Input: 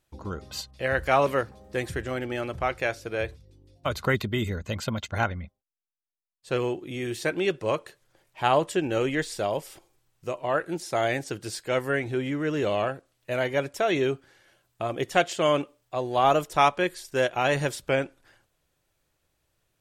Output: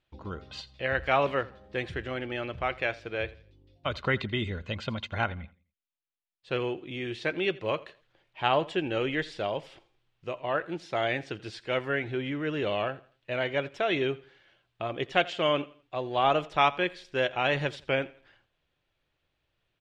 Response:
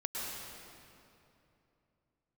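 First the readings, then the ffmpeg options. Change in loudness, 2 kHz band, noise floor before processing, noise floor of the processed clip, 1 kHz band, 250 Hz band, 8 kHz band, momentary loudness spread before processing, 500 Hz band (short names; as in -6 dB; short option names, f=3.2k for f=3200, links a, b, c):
-3.0 dB, -1.0 dB, -76 dBFS, -79 dBFS, -3.5 dB, -4.0 dB, under -15 dB, 11 LU, -3.5 dB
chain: -af "lowpass=f=3.2k:t=q:w=1.8,aecho=1:1:84|168|252:0.0891|0.0303|0.0103,volume=-4dB"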